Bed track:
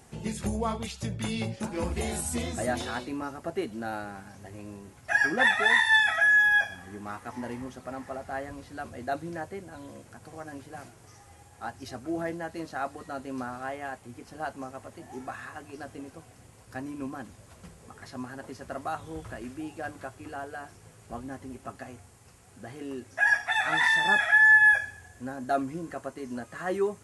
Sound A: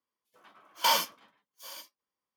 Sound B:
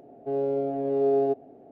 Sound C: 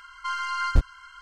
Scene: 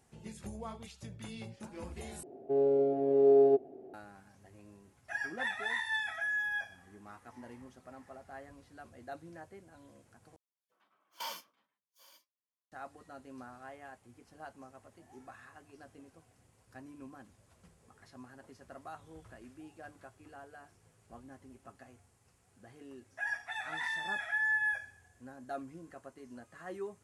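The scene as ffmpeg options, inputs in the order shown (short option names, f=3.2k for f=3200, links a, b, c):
-filter_complex "[0:a]volume=-13.5dB[a];[2:a]equalizer=f=370:t=o:w=0.29:g=12[b];[a]asplit=3[c][d][e];[c]atrim=end=2.234[f];[b]atrim=end=1.71,asetpts=PTS-STARTPTS,volume=-5dB[g];[d]atrim=start=3.936:end=10.364[h];[1:a]atrim=end=2.36,asetpts=PTS-STARTPTS,volume=-16.5dB[i];[e]atrim=start=12.716[j];[f][g]acrossfade=d=0.004:c1=hsin:c2=hsin[k];[k][h]acrossfade=d=0.004:c1=hsin:c2=hsin[l];[l][i]acrossfade=d=0.004:c1=hsin:c2=hsin[m];[m][j]acrossfade=d=0.004:c1=hsin:c2=hsin"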